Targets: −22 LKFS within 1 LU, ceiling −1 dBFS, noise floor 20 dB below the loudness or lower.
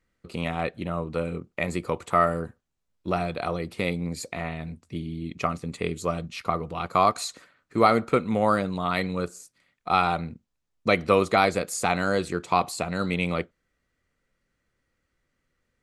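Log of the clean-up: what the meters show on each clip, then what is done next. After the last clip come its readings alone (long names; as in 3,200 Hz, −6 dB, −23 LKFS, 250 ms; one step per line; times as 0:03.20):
integrated loudness −26.5 LKFS; sample peak −4.5 dBFS; target loudness −22.0 LKFS
→ level +4.5 dB
brickwall limiter −1 dBFS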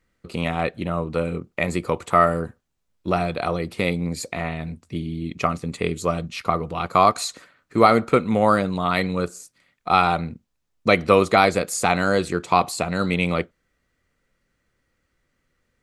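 integrated loudness −22.0 LKFS; sample peak −1.0 dBFS; background noise floor −73 dBFS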